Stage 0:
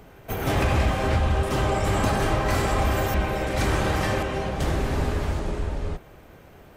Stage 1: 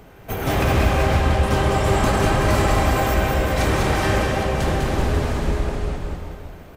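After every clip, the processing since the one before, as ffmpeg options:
-af "aecho=1:1:200|380|542|687.8|819:0.631|0.398|0.251|0.158|0.1,volume=2.5dB"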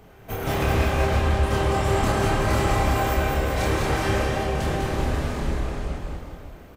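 -filter_complex "[0:a]asplit=2[a][b];[b]adelay=28,volume=-3dB[c];[a][c]amix=inputs=2:normalize=0,volume=-5.5dB"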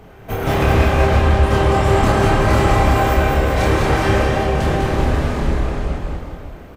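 -af "highshelf=f=4.4k:g=-7,volume=7.5dB"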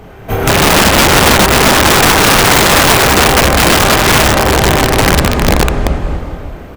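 -af "aeval=exprs='(mod(3.35*val(0)+1,2)-1)/3.35':c=same,volume=8dB"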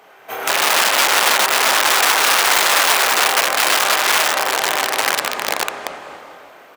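-af "highpass=740,volume=-5dB"

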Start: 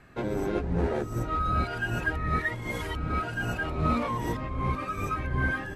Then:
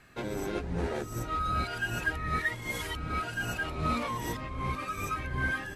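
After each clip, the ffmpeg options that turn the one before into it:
-af "highshelf=f=2.1k:g=11.5,volume=-5.5dB"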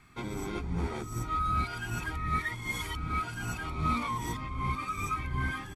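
-af "aecho=1:1:0.9:0.64,volume=-2.5dB"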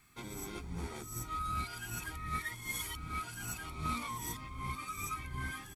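-af "aemphasis=mode=production:type=75kf,aeval=exprs='0.15*(cos(1*acos(clip(val(0)/0.15,-1,1)))-cos(1*PI/2))+0.0133*(cos(3*acos(clip(val(0)/0.15,-1,1)))-cos(3*PI/2))':c=same,volume=-6.5dB"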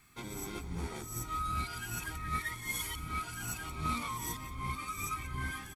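-af "aecho=1:1:179:0.178,volume=2dB"

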